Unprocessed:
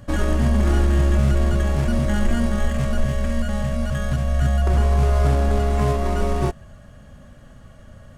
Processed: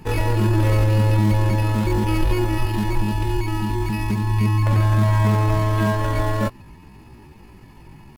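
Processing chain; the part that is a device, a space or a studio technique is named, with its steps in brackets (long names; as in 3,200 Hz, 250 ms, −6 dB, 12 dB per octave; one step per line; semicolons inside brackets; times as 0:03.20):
chipmunk voice (pitch shifter +7.5 semitones)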